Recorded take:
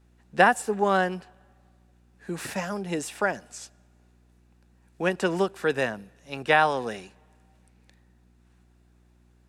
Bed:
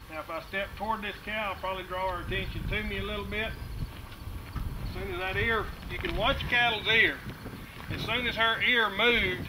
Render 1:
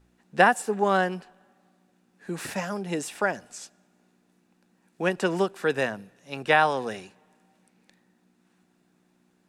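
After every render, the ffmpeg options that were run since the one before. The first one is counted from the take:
-af "bandreject=f=60:t=h:w=4,bandreject=f=120:t=h:w=4"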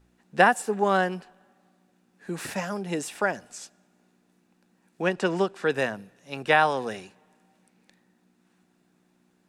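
-filter_complex "[0:a]asettb=1/sr,asplit=3[s0][s1][s2];[s0]atrim=end=5.024[s3];[s1]atrim=start=5.02:end=5.72,asetpts=PTS-STARTPTS,afade=t=in:d=0.004:c=qsin,afade=t=out:st=0.696:d=0.004:c=qsin,lowpass=7500[s4];[s2]atrim=start=5.716[s5];[s3][s4]acrossfade=d=0.004:c1=hsin:c2=qsin[s6];[s6][s5]acrossfade=d=0.004:c1=qsin:c2=hsin"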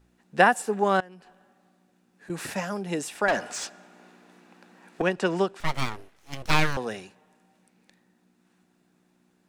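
-filter_complex "[0:a]asettb=1/sr,asplit=3[s0][s1][s2];[s0]atrim=end=1.004[s3];[s1]atrim=start=1:end=2.3,asetpts=PTS-STARTPTS,afade=t=in:d=0.004:c=qsin,afade=t=out:st=1.296:d=0.004:c=qsin,acompressor=threshold=0.00447:ratio=4:attack=3.2:release=140:knee=1:detection=peak[s4];[s2]atrim=start=2.296[s5];[s3][s4]acrossfade=d=0.004:c1=hsin:c2=qsin[s6];[s6][s5]acrossfade=d=0.004:c1=qsin:c2=hsin,asettb=1/sr,asplit=3[s7][s8][s9];[s7]atrim=end=3.284[s10];[s8]atrim=start=3.28:end=5.02,asetpts=PTS-STARTPTS,afade=t=in:d=0.004:c=qsin,afade=t=out:st=1.736:d=0.004:c=qsin,asplit=2[s11][s12];[s12]highpass=f=720:p=1,volume=17.8,asoftclip=type=tanh:threshold=0.224[s13];[s11][s13]amix=inputs=2:normalize=0,lowpass=f=2100:p=1,volume=0.501[s14];[s9]atrim=start=5.016[s15];[s10][s14]acrossfade=d=0.004:c1=hsin:c2=qsin[s16];[s16][s15]acrossfade=d=0.004:c1=qsin:c2=hsin,asettb=1/sr,asplit=3[s17][s18][s19];[s17]atrim=end=5.604[s20];[s18]atrim=start=5.6:end=6.77,asetpts=PTS-STARTPTS,afade=t=in:d=0.004:c=qsin,afade=t=out:st=1.166:d=0.004:c=qsin,aeval=exprs='abs(val(0))':c=same[s21];[s19]atrim=start=6.766[s22];[s20][s21]acrossfade=d=0.004:c1=hsin:c2=qsin[s23];[s23][s22]acrossfade=d=0.004:c1=qsin:c2=hsin"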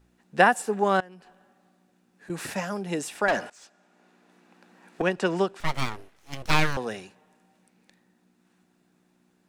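-filter_complex "[0:a]asplit=2[s0][s1];[s0]atrim=end=3.5,asetpts=PTS-STARTPTS,afade=t=out:st=3.496:d=0.004:c=hsin:silence=0.0668344[s2];[s1]atrim=start=3.5,asetpts=PTS-STARTPTS,afade=t=in:d=1.59:silence=0.0668344[s3];[s2][s3]concat=n=2:v=0:a=1"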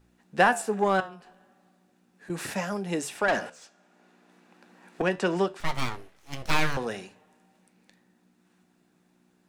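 -filter_complex "[0:a]flanger=delay=9.3:depth=7.4:regen=-77:speed=0.37:shape=sinusoidal,asplit=2[s0][s1];[s1]asoftclip=type=tanh:threshold=0.0596,volume=0.708[s2];[s0][s2]amix=inputs=2:normalize=0"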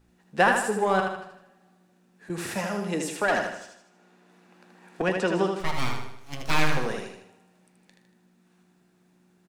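-af "aecho=1:1:78|156|234|312|390|468:0.562|0.264|0.124|0.0584|0.0274|0.0129"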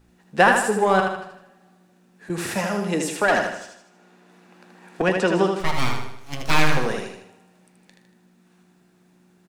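-af "volume=1.78,alimiter=limit=0.708:level=0:latency=1"

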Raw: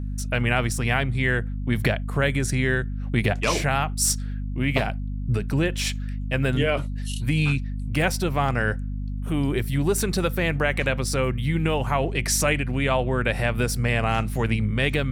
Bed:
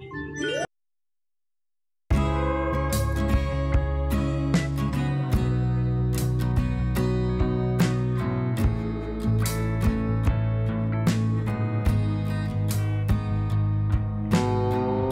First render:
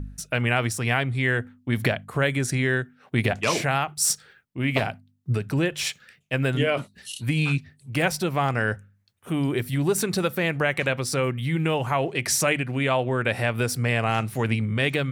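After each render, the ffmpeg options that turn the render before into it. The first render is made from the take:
-af "bandreject=f=50:t=h:w=4,bandreject=f=100:t=h:w=4,bandreject=f=150:t=h:w=4,bandreject=f=200:t=h:w=4,bandreject=f=250:t=h:w=4"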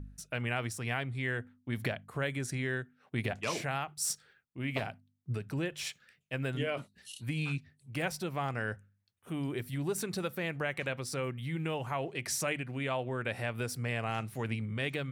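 -af "volume=0.282"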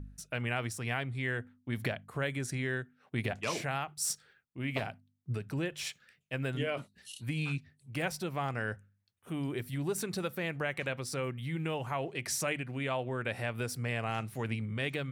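-af anull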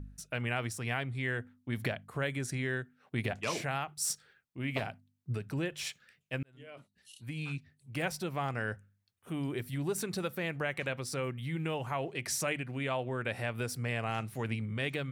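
-filter_complex "[0:a]asplit=2[s0][s1];[s0]atrim=end=6.43,asetpts=PTS-STARTPTS,afade=t=out:st=6.426:d=0.004:c=hsin[s2];[s1]atrim=start=6.43,asetpts=PTS-STARTPTS,afade=t=in:d=1.61[s3];[s2][s3]concat=n=2:v=0:a=1"

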